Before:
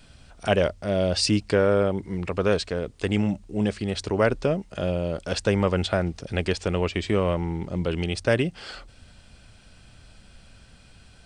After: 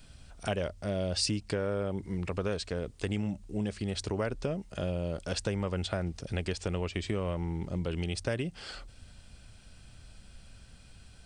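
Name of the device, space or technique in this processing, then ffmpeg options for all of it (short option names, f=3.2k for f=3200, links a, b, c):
ASMR close-microphone chain: -af "lowshelf=f=150:g=6,acompressor=threshold=-23dB:ratio=4,highshelf=f=6k:g=7.5,volume=-6dB"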